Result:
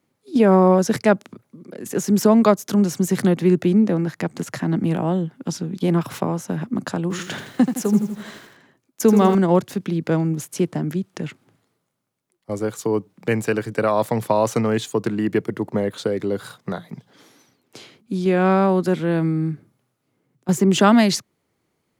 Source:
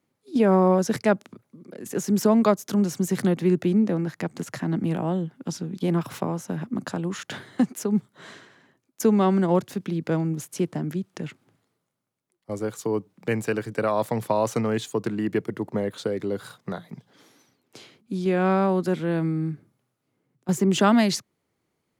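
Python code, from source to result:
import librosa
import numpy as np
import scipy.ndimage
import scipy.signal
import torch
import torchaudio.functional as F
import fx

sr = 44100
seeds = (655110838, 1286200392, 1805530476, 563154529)

y = fx.echo_crushed(x, sr, ms=82, feedback_pct=55, bits=8, wet_db=-8.0, at=(7.02, 9.35))
y = F.gain(torch.from_numpy(y), 4.5).numpy()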